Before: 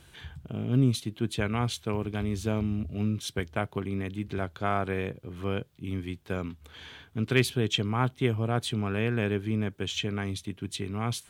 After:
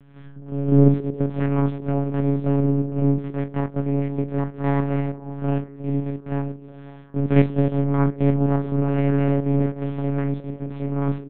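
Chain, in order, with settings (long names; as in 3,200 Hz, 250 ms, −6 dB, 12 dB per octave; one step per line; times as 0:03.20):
spectrum averaged block by block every 50 ms
full-wave rectification
Bessel low-pass filter 1,600 Hz, order 2
double-tracking delay 31 ms −11 dB
echo through a band-pass that steps 185 ms, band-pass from 290 Hz, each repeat 0.7 octaves, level −10 dB
one-pitch LPC vocoder at 8 kHz 140 Hz
parametric band 220 Hz +14 dB 2.3 octaves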